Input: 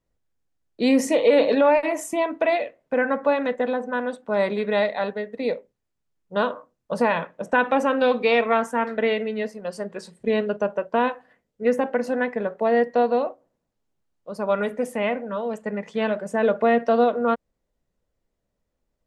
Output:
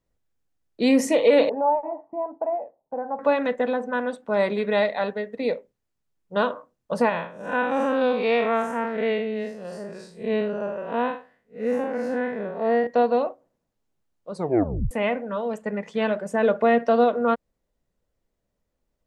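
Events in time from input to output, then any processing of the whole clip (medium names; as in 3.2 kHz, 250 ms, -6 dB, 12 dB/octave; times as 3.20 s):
1.49–3.19 s: four-pole ladder low-pass 900 Hz, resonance 75%
7.09–12.87 s: spectral blur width 132 ms
14.32 s: tape stop 0.59 s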